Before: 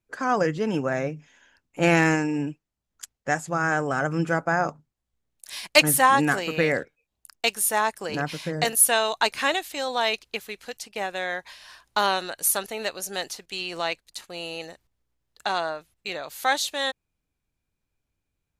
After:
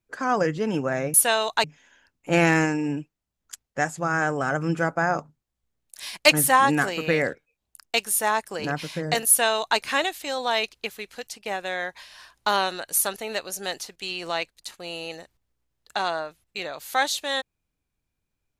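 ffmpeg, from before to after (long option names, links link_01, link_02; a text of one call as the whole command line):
ffmpeg -i in.wav -filter_complex "[0:a]asplit=3[link_01][link_02][link_03];[link_01]atrim=end=1.142[link_04];[link_02]atrim=start=8.778:end=9.282[link_05];[link_03]atrim=start=1.138[link_06];[link_04][link_05]acrossfade=duration=0.004:curve1=hsin:curve2=hsin[link_07];[link_07][link_06]acrossfade=duration=0.004:curve1=hsin:curve2=hsin" out.wav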